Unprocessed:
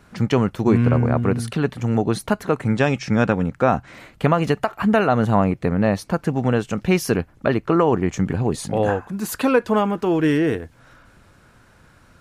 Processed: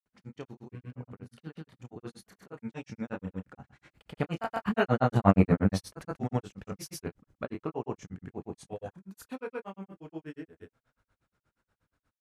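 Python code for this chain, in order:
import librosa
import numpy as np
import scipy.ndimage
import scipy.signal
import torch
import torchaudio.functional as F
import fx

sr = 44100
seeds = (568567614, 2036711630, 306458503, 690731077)

y = fx.doppler_pass(x, sr, speed_mps=11, closest_m=4.3, pass_at_s=5.48)
y = fx.room_early_taps(y, sr, ms=(31, 52), db=(-4.0, -12.0))
y = fx.granulator(y, sr, seeds[0], grain_ms=100.0, per_s=8.4, spray_ms=100.0, spread_st=0)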